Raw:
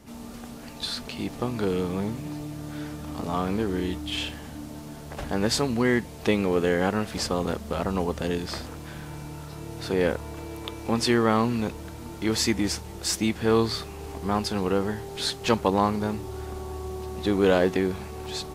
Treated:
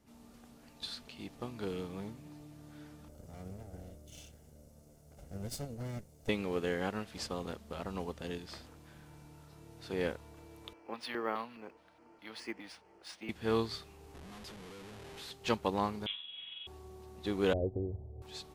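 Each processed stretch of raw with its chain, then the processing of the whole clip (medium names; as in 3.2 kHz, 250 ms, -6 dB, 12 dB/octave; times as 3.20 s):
3.08–6.29 s: comb filter that takes the minimum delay 1.4 ms + high-order bell 1.8 kHz -11 dB 2.8 oct
10.73–13.29 s: three-band isolator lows -21 dB, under 280 Hz, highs -24 dB, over 5.4 kHz + LFO notch square 2.4 Hz 380–3700 Hz + decimation joined by straight lines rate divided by 3×
14.14–15.31 s: compression 2.5:1, threshold -30 dBFS + Schmitt trigger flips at -40 dBFS + brick-wall FIR low-pass 13 kHz
16.06–16.67 s: high-pass 240 Hz + doubling 40 ms -4 dB + frequency inversion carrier 3.7 kHz
17.53–18.22 s: one-bit delta coder 32 kbps, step -35.5 dBFS + steep low-pass 680 Hz + resonant low shelf 140 Hz +6.5 dB, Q 3
whole clip: dynamic bell 3.2 kHz, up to +4 dB, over -44 dBFS, Q 1; upward expansion 1.5:1, over -33 dBFS; trim -9 dB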